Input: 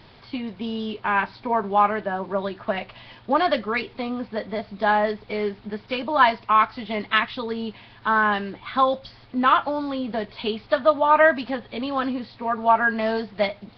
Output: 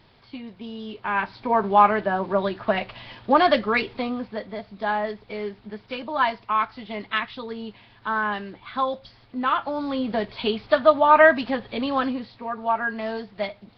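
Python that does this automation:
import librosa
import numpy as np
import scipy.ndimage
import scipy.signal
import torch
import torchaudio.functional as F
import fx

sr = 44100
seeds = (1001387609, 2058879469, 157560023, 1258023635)

y = fx.gain(x, sr, db=fx.line((0.77, -7.0), (1.65, 3.0), (3.9, 3.0), (4.54, -5.0), (9.55, -5.0), (9.99, 2.0), (11.94, 2.0), (12.5, -5.5)))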